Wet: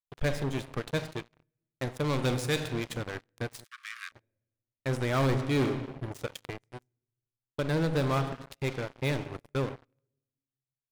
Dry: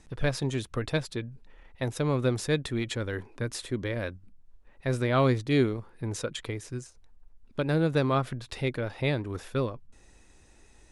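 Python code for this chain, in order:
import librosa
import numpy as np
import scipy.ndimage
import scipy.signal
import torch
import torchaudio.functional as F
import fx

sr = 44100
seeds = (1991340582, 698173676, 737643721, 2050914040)

y = fx.power_curve(x, sr, exponent=2.0)
y = fx.high_shelf(y, sr, hz=2100.0, db=7.5, at=(2.04, 2.59))
y = fx.room_shoebox(y, sr, seeds[0], volume_m3=710.0, walls='mixed', distance_m=0.34)
y = fx.leveller(y, sr, passes=5)
y = fx.cheby1_highpass(y, sr, hz=1100.0, order=10, at=(3.63, 4.11), fade=0.02)
y = y * 10.0 ** (-9.0 / 20.0)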